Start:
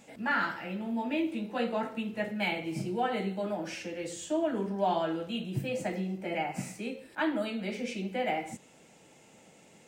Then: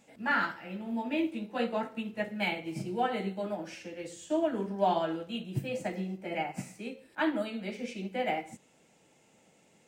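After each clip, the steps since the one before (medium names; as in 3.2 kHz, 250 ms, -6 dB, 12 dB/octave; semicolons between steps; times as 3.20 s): upward expansion 1.5:1, over -42 dBFS; trim +2 dB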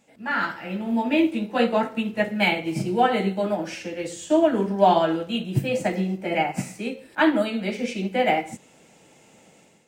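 level rider gain up to 10.5 dB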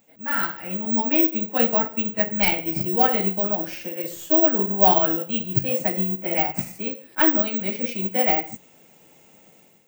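tracing distortion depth 0.048 ms; careless resampling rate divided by 2×, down none, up zero stuff; trim -2 dB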